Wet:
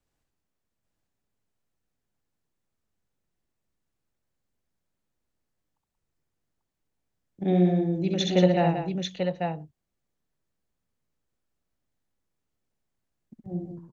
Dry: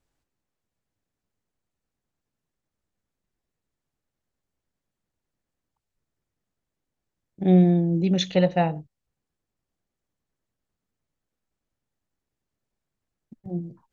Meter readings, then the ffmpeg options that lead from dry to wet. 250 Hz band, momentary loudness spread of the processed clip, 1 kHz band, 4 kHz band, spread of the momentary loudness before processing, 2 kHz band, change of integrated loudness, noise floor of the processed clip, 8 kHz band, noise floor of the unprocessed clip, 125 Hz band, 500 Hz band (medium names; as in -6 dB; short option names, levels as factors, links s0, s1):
-3.0 dB, 14 LU, 0.0 dB, 0.0 dB, 16 LU, 0.0 dB, -4.5 dB, -82 dBFS, no reading, -85 dBFS, -3.0 dB, 0.0 dB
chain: -filter_complex "[0:a]acrossover=split=220|1000|1300[s0][s1][s2][s3];[s0]alimiter=level_in=1.06:limit=0.0631:level=0:latency=1,volume=0.944[s4];[s4][s1][s2][s3]amix=inputs=4:normalize=0,aecho=1:1:67|181|841:0.668|0.398|0.631,volume=0.708"